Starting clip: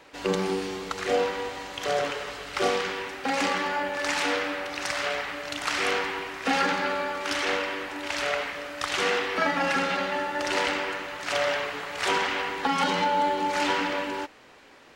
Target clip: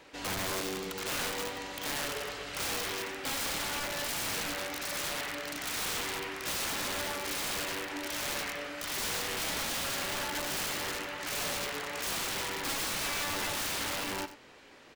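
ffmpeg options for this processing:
ffmpeg -i in.wav -filter_complex "[0:a]equalizer=frequency=1000:width_type=o:width=2:gain=-3.5,asplit=2[link_01][link_02];[link_02]alimiter=level_in=1.5dB:limit=-24dB:level=0:latency=1:release=68,volume=-1.5dB,volume=2.5dB[link_03];[link_01][link_03]amix=inputs=2:normalize=0,aeval=exprs='(mod(10.6*val(0)+1,2)-1)/10.6':channel_layout=same,aecho=1:1:94:0.211,volume=-8.5dB" out.wav

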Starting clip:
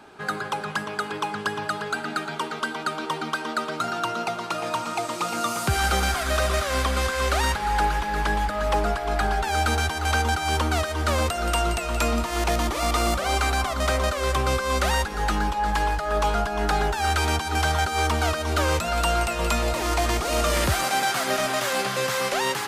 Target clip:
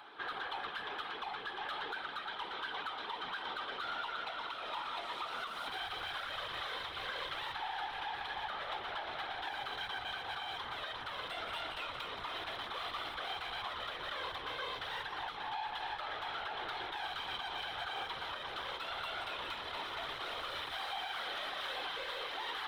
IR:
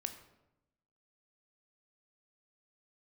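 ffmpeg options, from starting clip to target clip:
-filter_complex "[0:a]asplit=2[link_01][link_02];[1:a]atrim=start_sample=2205[link_03];[link_02][link_03]afir=irnorm=-1:irlink=0,volume=-5dB[link_04];[link_01][link_04]amix=inputs=2:normalize=0,aeval=exprs='(tanh(31.6*val(0)+0.45)-tanh(0.45))/31.6':channel_layout=same,acrossover=split=490 3300:gain=0.0891 1 0.112[link_05][link_06][link_07];[link_05][link_06][link_07]amix=inputs=3:normalize=0,acompressor=mode=upward:threshold=-56dB:ratio=2.5,superequalizer=8b=0.501:13b=3.16:15b=0.562,afftfilt=real='hypot(re,im)*cos(2*PI*random(0))':imag='hypot(re,im)*sin(2*PI*random(1))':win_size=512:overlap=0.75,alimiter=level_in=8dB:limit=-24dB:level=0:latency=1:release=262,volume=-8dB,volume=2dB"

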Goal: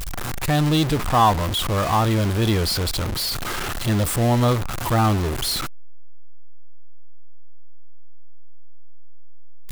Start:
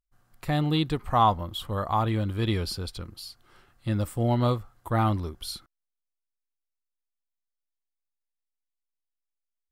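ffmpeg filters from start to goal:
ffmpeg -i in.wav -af "aeval=exprs='val(0)+0.5*0.075*sgn(val(0))':channel_layout=same,acrusher=bits=6:mix=0:aa=0.5,volume=2.5dB" out.wav

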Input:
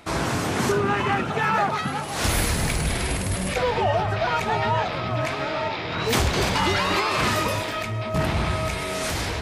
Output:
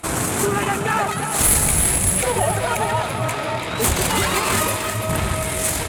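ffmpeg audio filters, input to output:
ffmpeg -i in.wav -filter_complex "[0:a]lowpass=11000,asplit=2[link_01][link_02];[link_02]alimiter=limit=-21.5dB:level=0:latency=1:release=186,volume=-2dB[link_03];[link_01][link_03]amix=inputs=2:normalize=0,atempo=1.6,aeval=exprs='0.376*(cos(1*acos(clip(val(0)/0.376,-1,1)))-cos(1*PI/2))+0.0168*(cos(7*acos(clip(val(0)/0.376,-1,1)))-cos(7*PI/2))':channel_layout=same,aexciter=amount=6.1:drive=6.2:freq=7400,asplit=2[link_04][link_05];[link_05]aecho=0:1:339|678|1017|1356|1695:0.355|0.17|0.0817|0.0392|0.0188[link_06];[link_04][link_06]amix=inputs=2:normalize=0" out.wav

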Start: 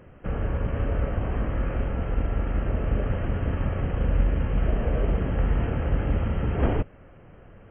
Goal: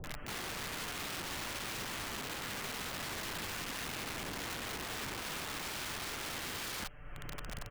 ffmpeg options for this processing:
ffmpeg -i in.wav -filter_complex "[0:a]equalizer=frequency=280:width_type=o:width=2.5:gain=-15,aecho=1:1:6.8:0.89,asettb=1/sr,asplit=3[link_01][link_02][link_03];[link_01]atrim=end=3.054[link_04];[link_02]atrim=start=3.05:end=5.18,asetpts=PTS-STARTPTS,afade=type=in:duration=0.004:curve=qsin,afade=type=out:start_time=2.126:duration=0.004:curve=qsin,acompressor=threshold=-26dB:ratio=3[link_05];[link_03]atrim=start=5.176[link_06];[link_04][link_05]acrossfade=duration=0.004:curve1=hsin:curve2=qsin[link_07];[link_07][link_06]acrossfade=duration=0.004:curve1=qsin:curve2=hsin,alimiter=limit=-22dB:level=0:latency=1:release=20,acompressor=mode=upward:threshold=-33dB:ratio=2.5,aeval=exprs='(mod(59.6*val(0)+1,2)-1)/59.6':channel_layout=same,acrossover=split=580[link_08][link_09];[link_09]adelay=40[link_10];[link_08][link_10]amix=inputs=2:normalize=0" out.wav

